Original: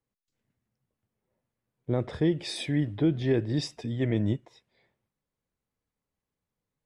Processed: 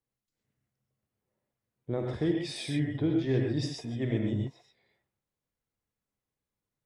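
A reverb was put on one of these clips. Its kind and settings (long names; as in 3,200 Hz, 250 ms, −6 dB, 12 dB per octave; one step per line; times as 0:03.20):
reverb whose tail is shaped and stops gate 150 ms rising, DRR 0.5 dB
level −5 dB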